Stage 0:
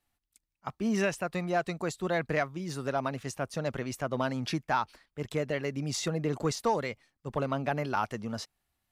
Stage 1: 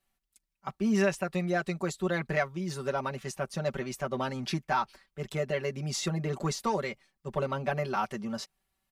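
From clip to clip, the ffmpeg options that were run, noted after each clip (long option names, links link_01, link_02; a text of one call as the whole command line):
ffmpeg -i in.wav -af "aecho=1:1:5.2:0.86,volume=-2dB" out.wav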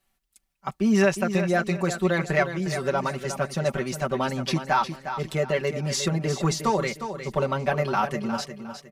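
ffmpeg -i in.wav -af "aecho=1:1:358|716|1074|1432:0.335|0.107|0.0343|0.011,volume=6dB" out.wav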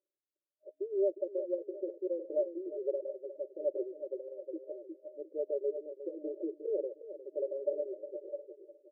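ffmpeg -i in.wav -af "lowshelf=frequency=410:gain=-8.5,afftfilt=real='re*between(b*sr/4096,280,620)':imag='im*between(b*sr/4096,280,620)':win_size=4096:overlap=0.75,aphaser=in_gain=1:out_gain=1:delay=4.9:decay=0.36:speed=0.26:type=triangular,volume=-4.5dB" out.wav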